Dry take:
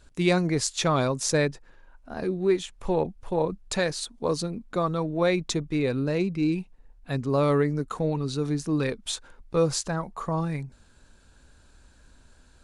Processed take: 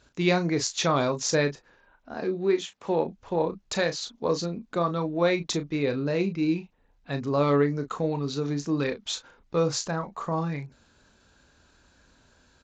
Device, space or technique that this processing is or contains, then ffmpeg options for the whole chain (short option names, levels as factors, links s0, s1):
Bluetooth headset: -filter_complex "[0:a]asettb=1/sr,asplit=3[s0][s1][s2];[s0]atrim=end=2.144[s3];[s1]atrim=start=2.14:end=3.08,asetpts=PTS-STARTPTS,afade=t=in:d=0.004:c=qsin,afade=t=out:st=0.936:d=0.004:c=qsin,highpass=150[s4];[s2]atrim=start=3.076[s5];[s3][s4]acrossfade=d=0.004:c1=hsin:c2=qsin[s6];[s6][s5]acrossfade=d=0.004:c1=qsin:c2=hsin,highpass=f=140:p=1,aecho=1:1:25|35:0.15|0.335,aresample=16000,aresample=44100" -ar 16000 -c:a sbc -b:a 64k